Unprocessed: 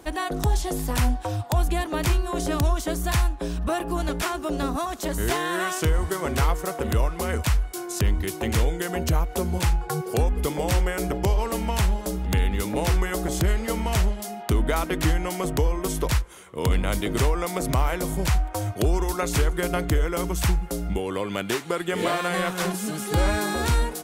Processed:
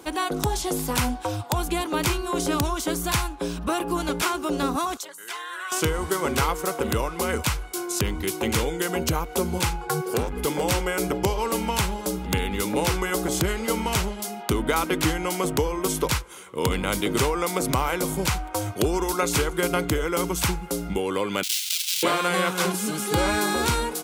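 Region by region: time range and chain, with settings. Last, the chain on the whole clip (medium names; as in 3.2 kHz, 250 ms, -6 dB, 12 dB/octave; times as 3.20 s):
4.97–5.72 s: resonances exaggerated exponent 1.5 + high-pass 1.3 kHz + compression 3:1, threshold -33 dBFS
9.87–10.63 s: peaking EQ 1.6 kHz +3.5 dB 0.39 oct + hard clipper -19.5 dBFS
21.43–22.03 s: square wave that keeps the level + inverse Chebyshev high-pass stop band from 700 Hz, stop band 70 dB + level flattener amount 70%
whole clip: high-pass 220 Hz 6 dB/octave; peaking EQ 660 Hz -9 dB 0.21 oct; band-stop 1.8 kHz, Q 8.6; trim +4 dB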